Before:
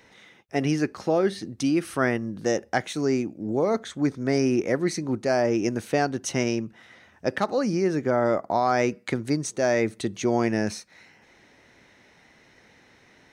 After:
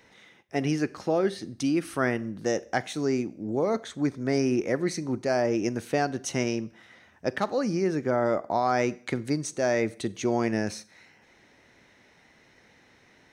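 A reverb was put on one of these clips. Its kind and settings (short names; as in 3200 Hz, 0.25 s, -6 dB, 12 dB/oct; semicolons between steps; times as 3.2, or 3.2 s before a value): Schroeder reverb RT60 0.52 s, combs from 32 ms, DRR 19 dB; gain -2.5 dB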